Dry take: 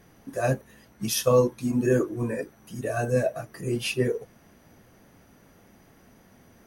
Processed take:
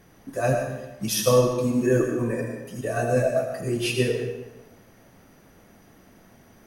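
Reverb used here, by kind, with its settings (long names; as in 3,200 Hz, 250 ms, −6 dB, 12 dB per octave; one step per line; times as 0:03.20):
comb and all-pass reverb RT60 0.99 s, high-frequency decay 0.9×, pre-delay 50 ms, DRR 3 dB
level +1 dB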